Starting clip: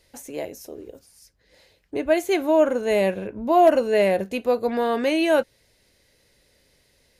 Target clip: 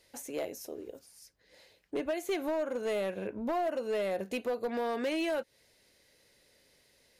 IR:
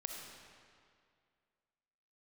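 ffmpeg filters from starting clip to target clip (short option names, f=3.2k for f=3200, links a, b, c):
-af "acompressor=threshold=-24dB:ratio=10,lowshelf=f=120:g=-11.5,asoftclip=type=hard:threshold=-24dB,volume=-3dB"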